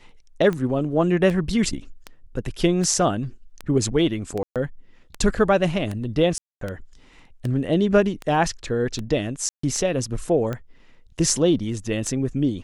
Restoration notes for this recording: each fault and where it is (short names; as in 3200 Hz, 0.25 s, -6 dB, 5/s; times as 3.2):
tick 78 rpm -16 dBFS
4.43–4.56 gap 0.127 s
6.38–6.61 gap 0.233 s
9.49–9.63 gap 0.144 s